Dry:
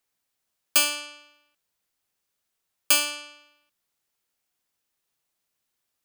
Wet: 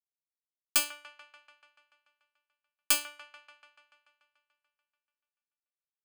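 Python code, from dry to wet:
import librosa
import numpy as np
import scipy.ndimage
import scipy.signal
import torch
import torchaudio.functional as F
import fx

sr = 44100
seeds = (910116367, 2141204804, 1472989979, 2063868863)

y = fx.power_curve(x, sr, exponent=2.0)
y = fx.echo_wet_bandpass(y, sr, ms=145, feedback_pct=69, hz=1200.0, wet_db=-12)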